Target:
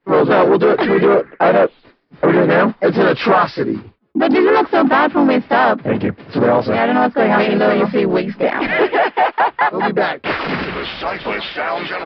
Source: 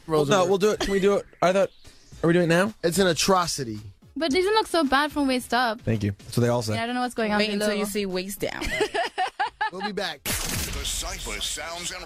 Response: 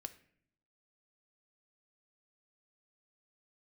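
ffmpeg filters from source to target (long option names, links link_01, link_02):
-filter_complex "[0:a]agate=range=-33dB:threshold=-38dB:ratio=3:detection=peak,asplit=4[link_01][link_02][link_03][link_04];[link_02]asetrate=29433,aresample=44100,atempo=1.49831,volume=-15dB[link_05];[link_03]asetrate=37084,aresample=44100,atempo=1.18921,volume=-6dB[link_06];[link_04]asetrate=52444,aresample=44100,atempo=0.840896,volume=-6dB[link_07];[link_01][link_05][link_06][link_07]amix=inputs=4:normalize=0,aresample=11025,asoftclip=type=tanh:threshold=-15dB,aresample=44100,apsyclip=21dB,acrossover=split=170 2300:gain=0.0708 1 0.1[link_08][link_09][link_10];[link_08][link_09][link_10]amix=inputs=3:normalize=0,volume=-7dB"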